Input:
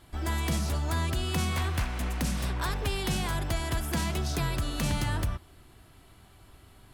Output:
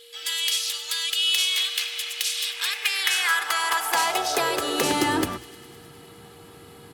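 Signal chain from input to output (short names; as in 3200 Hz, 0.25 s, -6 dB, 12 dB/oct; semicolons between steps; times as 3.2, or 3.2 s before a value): high-pass sweep 3200 Hz -> 170 Hz, 2.45–5.75; whine 470 Hz -62 dBFS; notches 60/120 Hz; comb 2.4 ms, depth 44%; on a send: thin delay 0.103 s, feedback 77%, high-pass 2300 Hz, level -17.5 dB; on the sum: gain +9 dB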